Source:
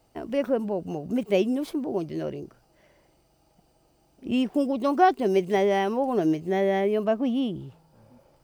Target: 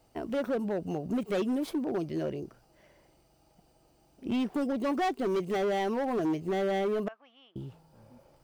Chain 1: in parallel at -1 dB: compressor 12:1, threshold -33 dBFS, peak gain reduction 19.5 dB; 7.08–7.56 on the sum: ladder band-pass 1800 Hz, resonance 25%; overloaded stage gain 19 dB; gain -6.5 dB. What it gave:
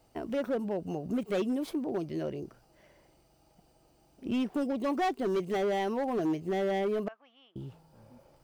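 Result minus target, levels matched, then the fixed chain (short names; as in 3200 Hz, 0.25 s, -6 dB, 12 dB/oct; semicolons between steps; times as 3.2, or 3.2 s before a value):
compressor: peak gain reduction +7 dB
in parallel at -1 dB: compressor 12:1, threshold -25.5 dBFS, peak gain reduction 13 dB; 7.08–7.56 on the sum: ladder band-pass 1800 Hz, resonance 25%; overloaded stage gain 19 dB; gain -6.5 dB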